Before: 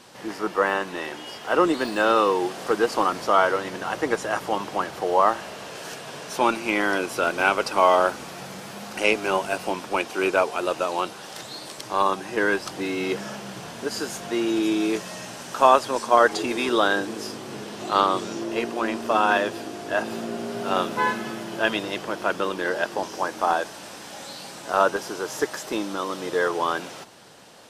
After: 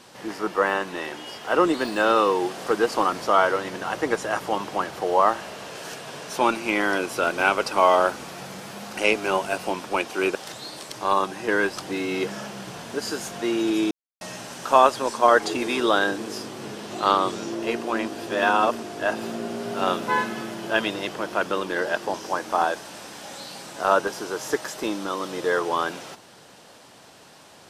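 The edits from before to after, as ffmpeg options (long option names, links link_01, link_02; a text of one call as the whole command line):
ffmpeg -i in.wav -filter_complex "[0:a]asplit=6[link_01][link_02][link_03][link_04][link_05][link_06];[link_01]atrim=end=10.352[link_07];[link_02]atrim=start=11.238:end=14.8,asetpts=PTS-STARTPTS,afade=type=out:start_time=3.558:duration=0.004:curve=hsin[link_08];[link_03]atrim=start=14.8:end=15.1,asetpts=PTS-STARTPTS,volume=0[link_09];[link_04]atrim=start=15.1:end=18.972,asetpts=PTS-STARTPTS,afade=type=in:duration=0.004:curve=hsin[link_10];[link_05]atrim=start=18.968:end=19.722,asetpts=PTS-STARTPTS,areverse[link_11];[link_06]atrim=start=19.718[link_12];[link_08][link_09][link_10]concat=n=3:v=0:a=1[link_13];[link_07][link_13]acrossfade=duration=0.004:curve1=hsin:curve2=hsin[link_14];[link_14][link_11]acrossfade=duration=0.004:curve1=hsin:curve2=hsin[link_15];[link_15][link_12]acrossfade=duration=0.004:curve1=hsin:curve2=hsin" out.wav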